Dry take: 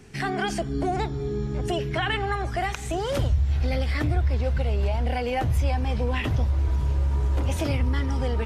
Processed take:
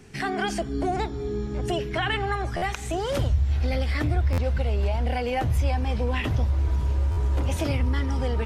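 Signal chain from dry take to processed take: de-hum 46.18 Hz, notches 3; buffer glitch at 2.56/4.32/7.11 s, samples 512, times 4

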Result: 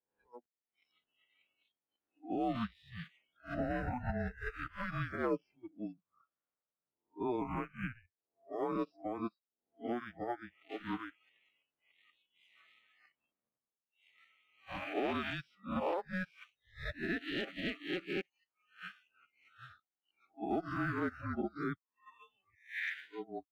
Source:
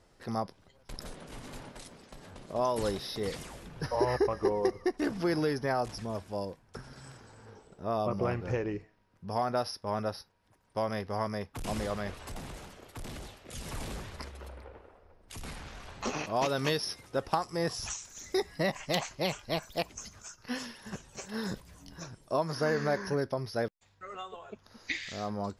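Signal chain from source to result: reverse spectral sustain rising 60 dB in 0.89 s; speed mistake 44.1 kHz file played as 48 kHz; mistuned SSB -360 Hz 600–3500 Hz; waveshaping leveller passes 1; spectral noise reduction 26 dB; peak limiter -24.5 dBFS, peak gain reduction 9.5 dB; upward expansion 2.5:1, over -43 dBFS

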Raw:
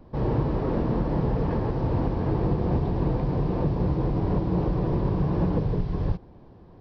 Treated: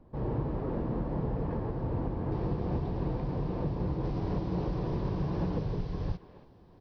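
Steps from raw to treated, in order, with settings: treble shelf 3.3 kHz -10 dB, from 2.32 s +2.5 dB, from 4.04 s +10.5 dB; speakerphone echo 280 ms, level -12 dB; trim -7.5 dB

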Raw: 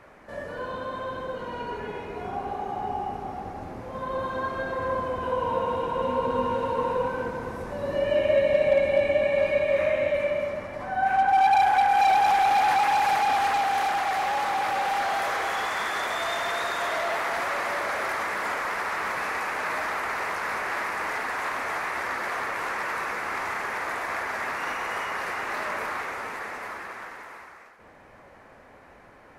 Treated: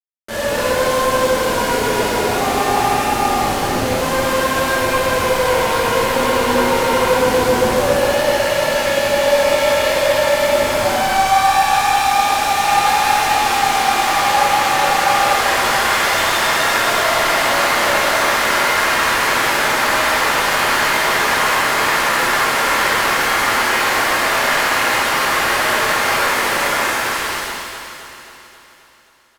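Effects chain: companded quantiser 2-bit; on a send: echo whose repeats swap between lows and highs 133 ms, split 1.6 kHz, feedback 78%, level -6 dB; on the sum: resampled via 32 kHz; pitch-shifted reverb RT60 1.2 s, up +7 st, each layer -8 dB, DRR -7.5 dB

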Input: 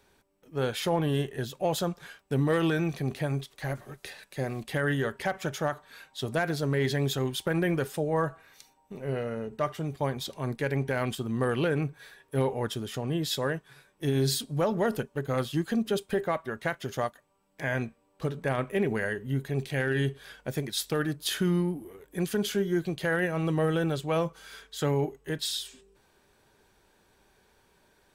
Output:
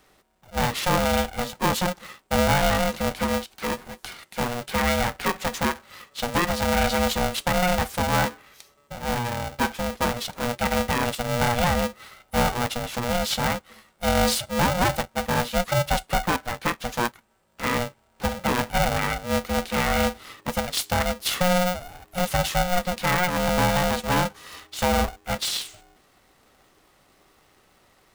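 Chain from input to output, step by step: polarity switched at an audio rate 360 Hz; trim +5 dB

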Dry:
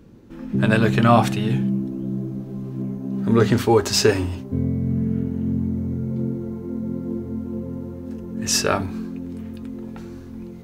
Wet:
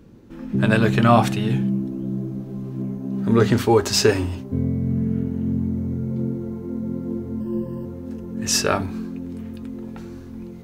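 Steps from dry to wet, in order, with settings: 7.40–7.85 s: rippled EQ curve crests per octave 1.3, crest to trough 15 dB

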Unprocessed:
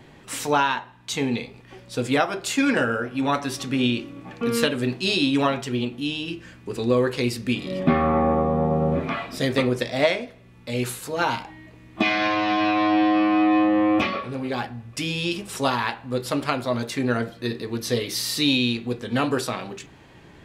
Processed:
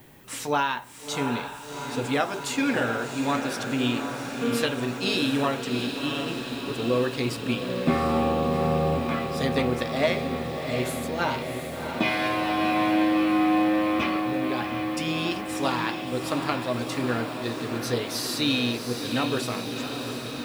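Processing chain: added noise violet -54 dBFS; echo that smears into a reverb 712 ms, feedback 74%, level -7 dB; trim -4 dB

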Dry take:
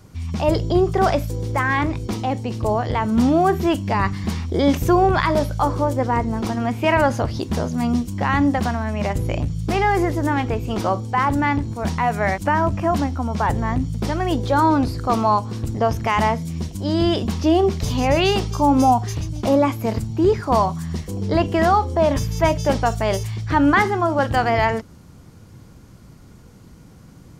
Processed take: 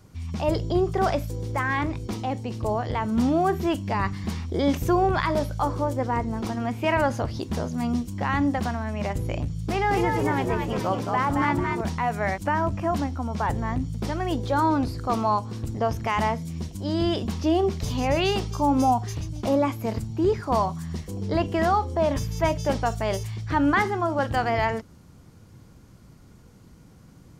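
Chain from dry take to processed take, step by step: 9.66–11.81 s: frequency-shifting echo 222 ms, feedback 36%, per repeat +69 Hz, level -3.5 dB; trim -5.5 dB

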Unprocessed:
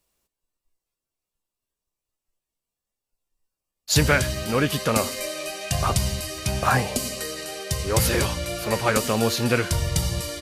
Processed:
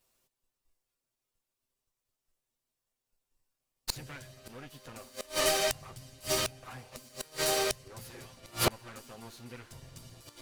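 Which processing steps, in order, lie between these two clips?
comb filter that takes the minimum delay 7.8 ms; waveshaping leveller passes 1; inverted gate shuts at -17 dBFS, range -31 dB; trim +3 dB

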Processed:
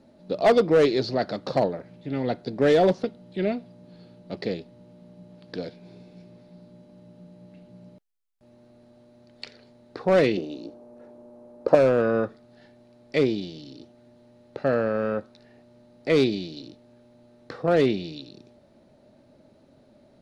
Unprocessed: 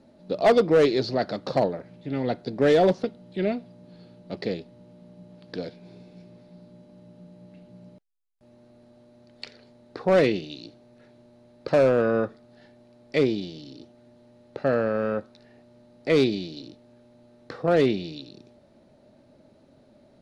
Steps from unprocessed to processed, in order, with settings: 10.37–11.75 s: graphic EQ 125/250/500/1000/2000/4000 Hz -6/+5/+8/+7/-6/-9 dB

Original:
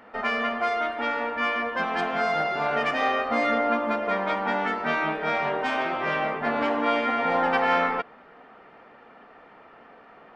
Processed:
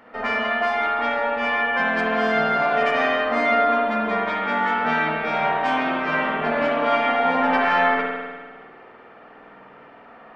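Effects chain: spring tank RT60 1.5 s, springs 50 ms, chirp 30 ms, DRR -2.5 dB; 0.69–1.89 s: whistle 830 Hz -30 dBFS

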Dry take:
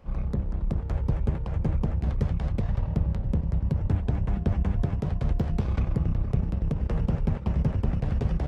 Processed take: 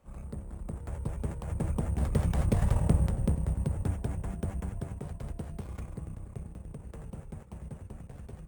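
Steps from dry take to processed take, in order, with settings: Doppler pass-by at 2.70 s, 10 m/s, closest 5.3 m; peaking EQ 74 Hz +3.5 dB 1.2 oct; sample-and-hold 5×; bass shelf 150 Hz -8.5 dB; trim +5 dB

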